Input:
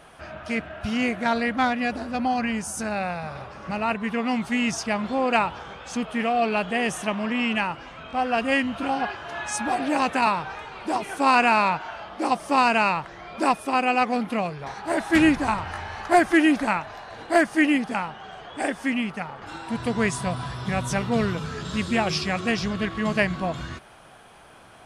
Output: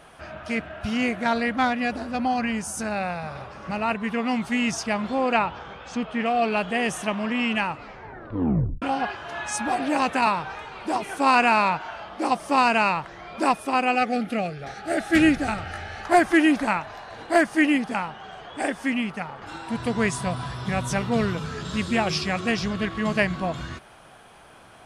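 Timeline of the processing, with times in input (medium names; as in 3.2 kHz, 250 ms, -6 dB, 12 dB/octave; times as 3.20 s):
5.33–6.26 s: distance through air 88 m
7.67 s: tape stop 1.15 s
13.95–16.05 s: Butterworth band-stop 1 kHz, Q 2.8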